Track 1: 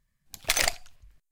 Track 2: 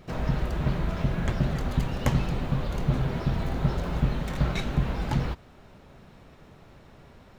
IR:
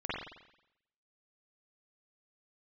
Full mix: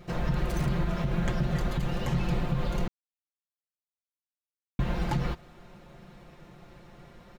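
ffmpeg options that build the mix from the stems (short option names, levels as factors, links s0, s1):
-filter_complex "[0:a]asoftclip=type=hard:threshold=0.0668,volume=0.141[s0];[1:a]aecho=1:1:5.7:0.65,volume=0.891,asplit=3[s1][s2][s3];[s1]atrim=end=2.88,asetpts=PTS-STARTPTS,afade=t=out:st=2.876:d=0.004:c=hsin[s4];[s2]atrim=start=2.88:end=4.79,asetpts=PTS-STARTPTS,volume=0[s5];[s3]atrim=start=4.79,asetpts=PTS-STARTPTS,afade=t=in:d=0.004:c=hsin[s6];[s4][s5][s6]concat=n=3:v=0:a=1[s7];[s0][s7]amix=inputs=2:normalize=0,alimiter=limit=0.126:level=0:latency=1:release=82"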